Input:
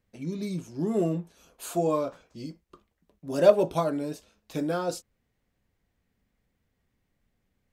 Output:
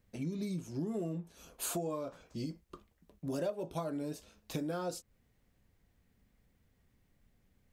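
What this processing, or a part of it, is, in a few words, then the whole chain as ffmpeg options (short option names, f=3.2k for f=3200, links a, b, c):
ASMR close-microphone chain: -af "lowshelf=f=230:g=4.5,acompressor=threshold=-36dB:ratio=6,highshelf=f=7.1k:g=4,volume=1dB"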